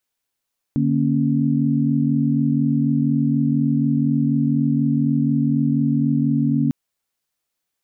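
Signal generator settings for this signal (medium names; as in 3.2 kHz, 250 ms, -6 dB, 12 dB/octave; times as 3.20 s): chord D3/A#3/C#4 sine, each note -20 dBFS 5.95 s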